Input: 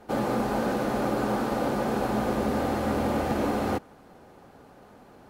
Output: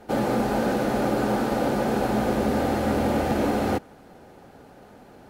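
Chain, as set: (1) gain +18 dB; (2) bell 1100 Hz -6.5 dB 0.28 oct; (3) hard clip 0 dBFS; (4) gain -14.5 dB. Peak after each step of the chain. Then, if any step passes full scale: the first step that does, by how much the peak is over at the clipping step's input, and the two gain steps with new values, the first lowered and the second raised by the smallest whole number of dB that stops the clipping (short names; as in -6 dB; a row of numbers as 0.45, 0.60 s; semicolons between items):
+3.5, +3.0, 0.0, -14.5 dBFS; step 1, 3.0 dB; step 1 +15 dB, step 4 -11.5 dB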